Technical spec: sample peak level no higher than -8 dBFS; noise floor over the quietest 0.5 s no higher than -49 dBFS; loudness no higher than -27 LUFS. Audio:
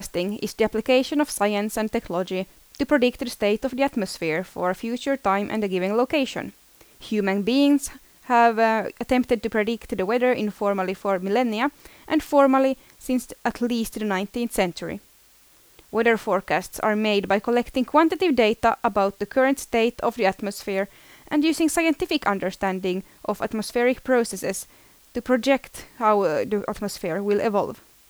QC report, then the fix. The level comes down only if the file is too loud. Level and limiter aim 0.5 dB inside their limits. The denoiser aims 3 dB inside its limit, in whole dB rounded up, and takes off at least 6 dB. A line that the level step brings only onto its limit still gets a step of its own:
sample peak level -4.5 dBFS: fail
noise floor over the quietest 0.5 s -55 dBFS: OK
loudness -23.0 LUFS: fail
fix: gain -4.5 dB

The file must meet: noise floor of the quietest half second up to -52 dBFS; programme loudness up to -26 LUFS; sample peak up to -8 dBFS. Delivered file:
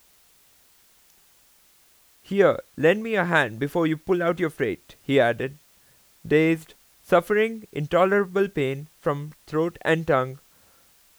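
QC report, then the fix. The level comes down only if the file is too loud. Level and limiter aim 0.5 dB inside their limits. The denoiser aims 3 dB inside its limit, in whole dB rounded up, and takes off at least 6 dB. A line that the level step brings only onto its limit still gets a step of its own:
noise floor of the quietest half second -58 dBFS: OK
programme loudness -23.5 LUFS: fail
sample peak -6.0 dBFS: fail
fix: gain -3 dB

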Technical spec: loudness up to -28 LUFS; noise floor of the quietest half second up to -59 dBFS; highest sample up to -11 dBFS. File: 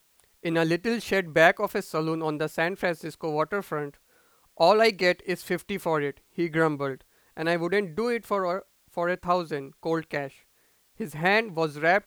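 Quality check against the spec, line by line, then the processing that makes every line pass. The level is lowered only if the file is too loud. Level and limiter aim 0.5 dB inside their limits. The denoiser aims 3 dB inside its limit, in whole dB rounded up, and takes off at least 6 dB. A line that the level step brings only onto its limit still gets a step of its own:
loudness -26.5 LUFS: fail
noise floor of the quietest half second -65 dBFS: OK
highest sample -6.0 dBFS: fail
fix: gain -2 dB; limiter -11.5 dBFS

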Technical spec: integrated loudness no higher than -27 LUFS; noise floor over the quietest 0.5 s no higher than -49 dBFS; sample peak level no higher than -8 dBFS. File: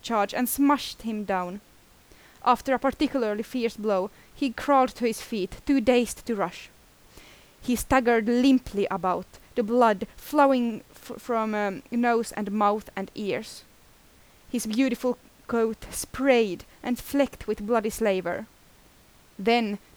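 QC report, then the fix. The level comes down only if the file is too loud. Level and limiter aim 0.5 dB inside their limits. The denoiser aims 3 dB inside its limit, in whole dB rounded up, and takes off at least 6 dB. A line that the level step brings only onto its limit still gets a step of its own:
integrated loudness -26.0 LUFS: fail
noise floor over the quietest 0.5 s -56 dBFS: OK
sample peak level -7.5 dBFS: fail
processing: gain -1.5 dB

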